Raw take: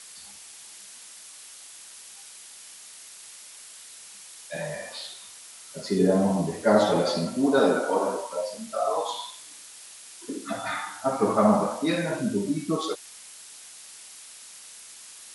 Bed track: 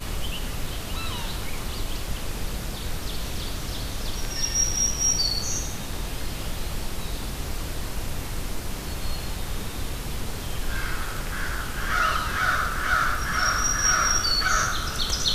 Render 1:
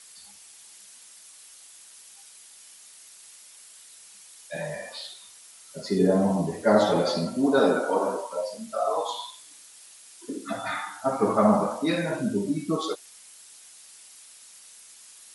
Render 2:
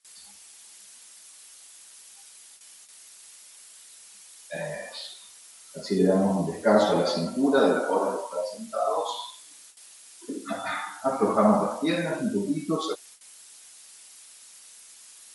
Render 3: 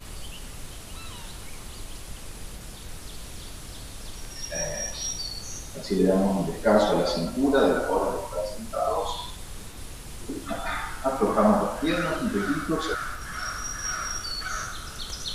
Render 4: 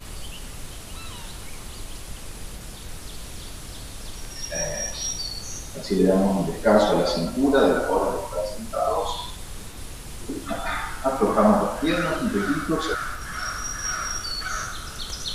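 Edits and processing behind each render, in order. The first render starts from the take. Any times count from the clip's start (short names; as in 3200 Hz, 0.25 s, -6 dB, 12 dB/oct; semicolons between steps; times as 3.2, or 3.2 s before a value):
denoiser 6 dB, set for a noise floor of -46 dBFS
gate with hold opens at -39 dBFS; bell 120 Hz -15 dB 0.23 oct
add bed track -9.5 dB
gain +2.5 dB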